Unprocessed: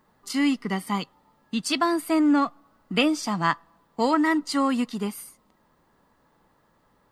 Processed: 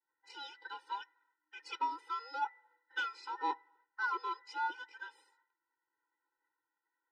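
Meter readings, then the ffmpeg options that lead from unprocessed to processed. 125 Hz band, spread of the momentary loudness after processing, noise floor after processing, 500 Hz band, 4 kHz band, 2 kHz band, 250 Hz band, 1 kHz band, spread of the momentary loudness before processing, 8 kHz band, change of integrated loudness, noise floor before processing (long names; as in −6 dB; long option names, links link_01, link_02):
below −40 dB, 14 LU, below −85 dBFS, −25.5 dB, −16.5 dB, −9.5 dB, −35.0 dB, −9.5 dB, 11 LU, below −25 dB, −15.0 dB, −65 dBFS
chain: -af "afftfilt=real='real(if(between(b,1,1012),(2*floor((b-1)/92)+1)*92-b,b),0)':imag='imag(if(between(b,1,1012),(2*floor((b-1)/92)+1)*92-b,b),0)*if(between(b,1,1012),-1,1)':win_size=2048:overlap=0.75,agate=range=-33dB:threshold=-54dB:ratio=3:detection=peak,aemphasis=mode=reproduction:type=75fm,asoftclip=type=tanh:threshold=-15dB,highpass=340,lowpass=4600,afftfilt=real='re*eq(mod(floor(b*sr/1024/260),2),1)':imag='im*eq(mod(floor(b*sr/1024/260),2),1)':win_size=1024:overlap=0.75,volume=-6.5dB"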